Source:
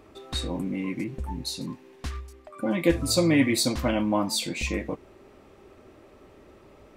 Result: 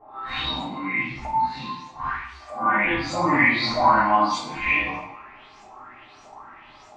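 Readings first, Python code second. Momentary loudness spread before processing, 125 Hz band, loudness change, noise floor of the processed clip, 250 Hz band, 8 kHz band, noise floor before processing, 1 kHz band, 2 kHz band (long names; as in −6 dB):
17 LU, −4.0 dB, +4.5 dB, −49 dBFS, −3.5 dB, −11.5 dB, −54 dBFS, +16.0 dB, +12.0 dB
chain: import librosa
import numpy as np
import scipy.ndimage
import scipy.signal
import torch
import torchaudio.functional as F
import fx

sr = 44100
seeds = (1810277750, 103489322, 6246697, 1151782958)

y = fx.phase_scramble(x, sr, seeds[0], window_ms=200)
y = fx.env_lowpass_down(y, sr, base_hz=1800.0, full_db=-22.5)
y = fx.low_shelf_res(y, sr, hz=680.0, db=-10.0, q=3.0)
y = fx.filter_lfo_lowpass(y, sr, shape='saw_up', hz=1.6, low_hz=610.0, high_hz=7400.0, q=5.1)
y = fx.rev_double_slope(y, sr, seeds[1], early_s=0.54, late_s=1.5, knee_db=-18, drr_db=-5.5)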